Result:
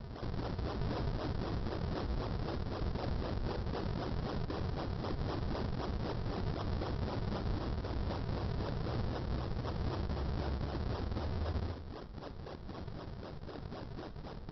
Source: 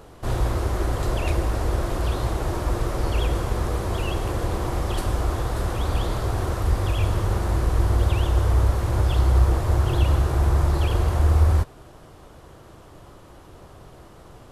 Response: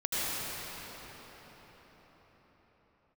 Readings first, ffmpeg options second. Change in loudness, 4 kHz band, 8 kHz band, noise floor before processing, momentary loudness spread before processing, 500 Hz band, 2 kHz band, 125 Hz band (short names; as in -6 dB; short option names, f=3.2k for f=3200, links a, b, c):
-16.0 dB, -12.0 dB, under -25 dB, -47 dBFS, 6 LU, -11.5 dB, -13.5 dB, -15.5 dB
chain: -filter_complex "[0:a]highpass=110,lowshelf=f=360:g=-6.5,asplit=2[a][b];[b]adelay=87,lowpass=f=910:p=1,volume=-5.5dB,asplit=2[c][d];[d]adelay=87,lowpass=f=910:p=1,volume=0.26,asplit=2[e][f];[f]adelay=87,lowpass=f=910:p=1,volume=0.26[g];[a][c][e][g]amix=inputs=4:normalize=0,aresample=11025,acrusher=samples=23:mix=1:aa=0.000001:lfo=1:lforange=36.8:lforate=3.9,aresample=44100,acompressor=threshold=-36dB:ratio=6,alimiter=level_in=10.5dB:limit=-24dB:level=0:latency=1:release=56,volume=-10.5dB,equalizer=f=2.5k:w=1.4:g=-8.5,bandreject=f=173.8:t=h:w=4,bandreject=f=347.6:t=h:w=4,bandreject=f=521.4:t=h:w=4,bandreject=f=695.2:t=h:w=4,bandreject=f=869:t=h:w=4,bandreject=f=1.0428k:t=h:w=4,bandreject=f=1.2166k:t=h:w=4,bandreject=f=1.3904k:t=h:w=4,bandreject=f=1.5642k:t=h:w=4,bandreject=f=1.738k:t=h:w=4,bandreject=f=1.9118k:t=h:w=4,bandreject=f=2.0856k:t=h:w=4,bandreject=f=2.2594k:t=h:w=4,bandreject=f=2.4332k:t=h:w=4,bandreject=f=2.607k:t=h:w=4,bandreject=f=2.7808k:t=h:w=4,bandreject=f=2.9546k:t=h:w=4,bandreject=f=3.1284k:t=h:w=4,bandreject=f=3.3022k:t=h:w=4,bandreject=f=3.476k:t=h:w=4,bandreject=f=3.6498k:t=h:w=4,bandreject=f=3.8236k:t=h:w=4,bandreject=f=3.9974k:t=h:w=4,bandreject=f=4.1712k:t=h:w=4,bandreject=f=4.345k:t=h:w=4,bandreject=f=4.5188k:t=h:w=4,bandreject=f=4.6926k:t=h:w=4,bandreject=f=4.8664k:t=h:w=4,bandreject=f=5.0402k:t=h:w=4,bandreject=f=5.214k:t=h:w=4,bandreject=f=5.3878k:t=h:w=4,bandreject=f=5.5616k:t=h:w=4,bandreject=f=5.7354k:t=h:w=4,asplit=2[h][i];[1:a]atrim=start_sample=2205,afade=t=out:st=0.14:d=0.01,atrim=end_sample=6615[j];[i][j]afir=irnorm=-1:irlink=0,volume=-14dB[k];[h][k]amix=inputs=2:normalize=0,volume=4.5dB" -ar 22050 -c:a libmp3lame -b:a 40k